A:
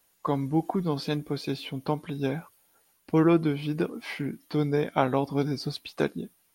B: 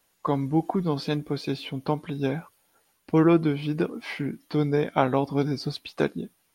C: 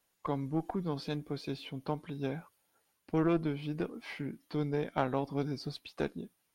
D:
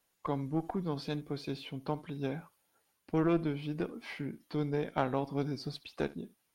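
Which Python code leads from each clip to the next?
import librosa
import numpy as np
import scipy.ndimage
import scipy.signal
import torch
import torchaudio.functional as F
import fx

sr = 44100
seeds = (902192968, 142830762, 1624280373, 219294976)

y1 = fx.high_shelf(x, sr, hz=8900.0, db=-7.5)
y1 = y1 * librosa.db_to_amplitude(2.0)
y2 = fx.diode_clip(y1, sr, knee_db=-18.0)
y2 = y2 * librosa.db_to_amplitude(-8.5)
y3 = y2 + 10.0 ** (-20.5 / 20.0) * np.pad(y2, (int(71 * sr / 1000.0), 0))[:len(y2)]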